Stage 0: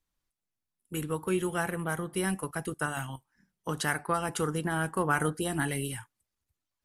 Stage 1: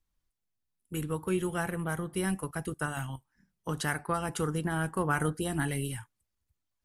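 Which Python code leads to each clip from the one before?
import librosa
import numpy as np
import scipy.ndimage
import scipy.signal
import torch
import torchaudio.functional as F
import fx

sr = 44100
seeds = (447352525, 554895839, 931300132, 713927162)

y = fx.low_shelf(x, sr, hz=140.0, db=8.5)
y = y * librosa.db_to_amplitude(-2.5)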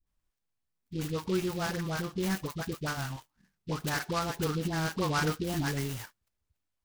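y = fx.dispersion(x, sr, late='highs', ms=69.0, hz=740.0)
y = fx.noise_mod_delay(y, sr, seeds[0], noise_hz=3400.0, depth_ms=0.059)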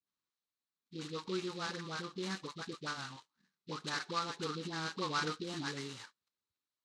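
y = fx.cabinet(x, sr, low_hz=220.0, low_slope=12, high_hz=7800.0, hz=(670.0, 1200.0, 4000.0), db=(-8, 5, 9))
y = y * librosa.db_to_amplitude(-6.5)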